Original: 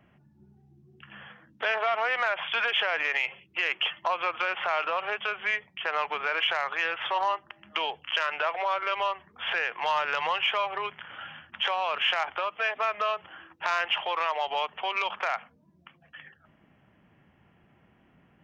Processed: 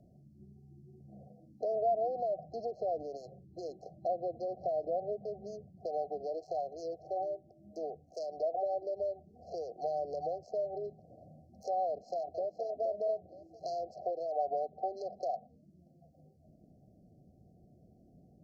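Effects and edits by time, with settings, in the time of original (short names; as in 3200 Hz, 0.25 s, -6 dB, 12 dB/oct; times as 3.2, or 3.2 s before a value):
1.72–5.86 tone controls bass +8 dB, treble -5 dB
6.95–8.18 bell 2500 Hz -14 dB 1.4 oct
11.87–12.65 echo throw 0.47 s, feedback 30%, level -8 dB
whole clip: low shelf 140 Hz +4 dB; FFT band-reject 770–4100 Hz; treble ducked by the level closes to 2200 Hz, closed at -32.5 dBFS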